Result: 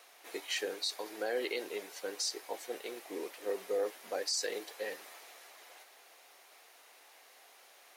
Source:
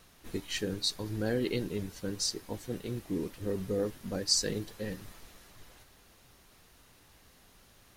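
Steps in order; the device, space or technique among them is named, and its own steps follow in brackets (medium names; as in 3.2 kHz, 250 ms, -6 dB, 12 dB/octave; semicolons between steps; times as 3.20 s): laptop speaker (high-pass 430 Hz 24 dB/octave; peaking EQ 740 Hz +6 dB 0.42 oct; peaking EQ 2.2 kHz +5 dB 0.44 oct; peak limiter -26 dBFS, peak gain reduction 12.5 dB); trim +1.5 dB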